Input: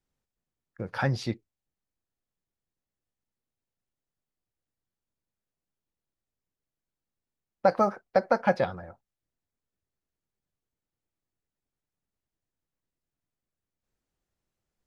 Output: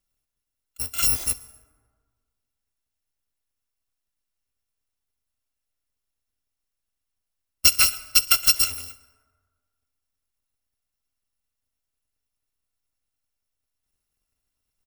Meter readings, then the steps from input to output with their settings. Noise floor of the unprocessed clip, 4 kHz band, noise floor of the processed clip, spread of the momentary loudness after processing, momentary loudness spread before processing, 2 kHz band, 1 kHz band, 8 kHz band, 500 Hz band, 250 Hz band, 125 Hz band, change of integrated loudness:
under -85 dBFS, +23.0 dB, -83 dBFS, 15 LU, 15 LU, +5.5 dB, -8.0 dB, no reading, -20.5 dB, -14.5 dB, -8.5 dB, +8.5 dB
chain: bit-reversed sample order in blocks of 256 samples; feedback delay 66 ms, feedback 57%, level -23 dB; plate-style reverb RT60 1.6 s, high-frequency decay 0.45×, pre-delay 95 ms, DRR 19 dB; trim +5 dB

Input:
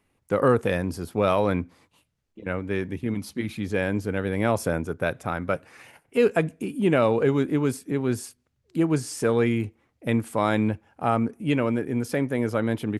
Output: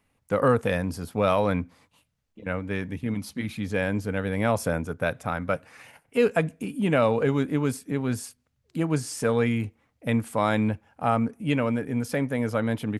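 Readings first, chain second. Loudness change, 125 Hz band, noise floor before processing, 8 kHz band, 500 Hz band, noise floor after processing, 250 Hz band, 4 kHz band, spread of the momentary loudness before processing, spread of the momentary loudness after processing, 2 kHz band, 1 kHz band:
-1.0 dB, 0.0 dB, -73 dBFS, 0.0 dB, -1.5 dB, -73 dBFS, -1.5 dB, 0.0 dB, 9 LU, 9 LU, 0.0 dB, 0.0 dB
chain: peaking EQ 360 Hz -13 dB 0.23 oct

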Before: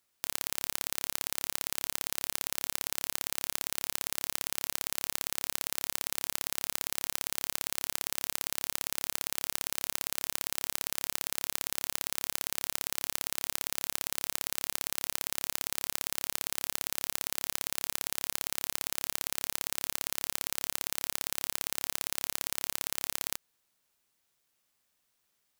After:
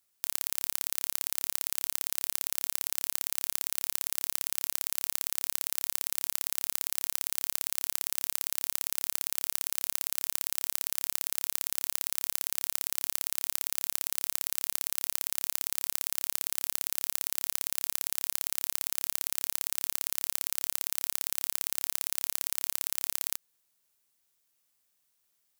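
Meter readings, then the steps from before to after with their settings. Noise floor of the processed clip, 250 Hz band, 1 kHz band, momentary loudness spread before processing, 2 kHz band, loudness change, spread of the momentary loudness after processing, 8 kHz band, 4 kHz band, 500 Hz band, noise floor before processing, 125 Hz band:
-75 dBFS, -4.5 dB, -4.0 dB, 0 LU, -3.5 dB, +2.5 dB, 0 LU, +1.5 dB, -1.5 dB, -4.5 dB, -77 dBFS, -4.5 dB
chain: treble shelf 5.5 kHz +8.5 dB; trim -4.5 dB

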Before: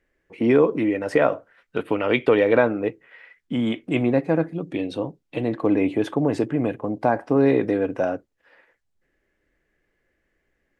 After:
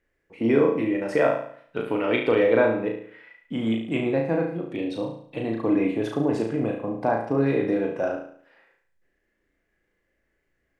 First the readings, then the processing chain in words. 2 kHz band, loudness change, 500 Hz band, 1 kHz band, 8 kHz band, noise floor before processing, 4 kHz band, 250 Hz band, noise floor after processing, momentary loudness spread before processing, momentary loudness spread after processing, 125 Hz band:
-2.0 dB, -2.0 dB, -2.0 dB, -2.5 dB, no reading, -73 dBFS, -2.0 dB, -2.5 dB, -74 dBFS, 11 LU, 11 LU, -2.5 dB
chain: flutter echo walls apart 6.1 m, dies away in 0.57 s; trim -4.5 dB

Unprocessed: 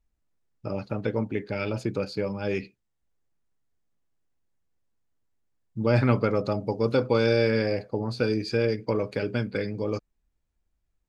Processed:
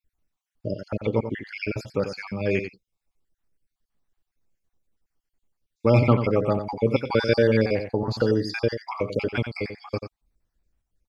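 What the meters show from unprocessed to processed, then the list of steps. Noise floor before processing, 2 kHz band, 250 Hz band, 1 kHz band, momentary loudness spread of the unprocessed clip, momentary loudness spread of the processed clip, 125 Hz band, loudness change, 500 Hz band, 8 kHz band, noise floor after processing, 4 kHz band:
-77 dBFS, +2.5 dB, +2.0 dB, +3.0 dB, 10 LU, 14 LU, +2.5 dB, +2.0 dB, +2.0 dB, no reading, under -85 dBFS, +1.0 dB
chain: random holes in the spectrogram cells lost 50%; dynamic bell 2.1 kHz, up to +3 dB, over -49 dBFS, Q 1.7; on a send: delay 90 ms -9 dB; on the sum: trim +4 dB

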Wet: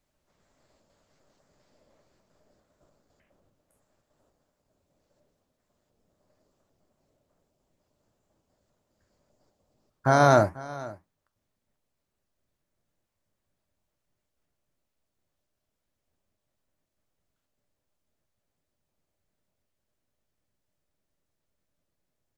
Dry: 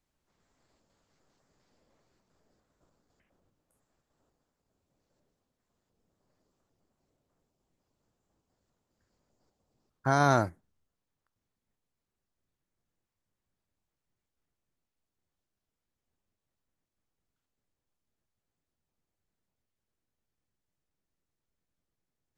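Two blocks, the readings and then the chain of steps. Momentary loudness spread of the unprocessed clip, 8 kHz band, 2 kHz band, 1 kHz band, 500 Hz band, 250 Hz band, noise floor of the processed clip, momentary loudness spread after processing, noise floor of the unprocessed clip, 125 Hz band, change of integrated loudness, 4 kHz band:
12 LU, +4.0 dB, +4.0 dB, +5.0 dB, +8.5 dB, +4.0 dB, -82 dBFS, 20 LU, under -85 dBFS, +4.0 dB, +4.5 dB, +4.0 dB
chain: peaking EQ 600 Hz +8 dB 0.25 oct; flange 1.7 Hz, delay 6.6 ms, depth 6.4 ms, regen -74%; delay 491 ms -19 dB; trim +8.5 dB

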